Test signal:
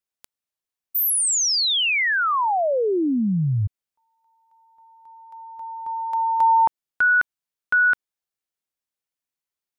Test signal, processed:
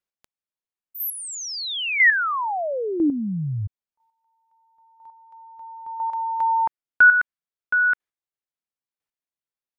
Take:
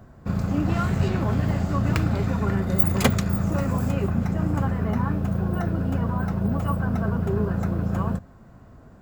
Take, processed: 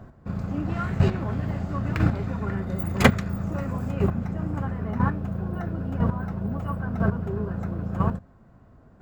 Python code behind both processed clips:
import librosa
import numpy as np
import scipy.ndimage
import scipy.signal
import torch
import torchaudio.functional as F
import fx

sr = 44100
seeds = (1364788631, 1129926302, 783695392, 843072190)

y = fx.dynamic_eq(x, sr, hz=1800.0, q=1.5, threshold_db=-37.0, ratio=4.0, max_db=6)
y = fx.chopper(y, sr, hz=1.0, depth_pct=60, duty_pct=10)
y = fx.high_shelf(y, sr, hz=4500.0, db=-9.5)
y = y * librosa.db_to_amplitude(3.0)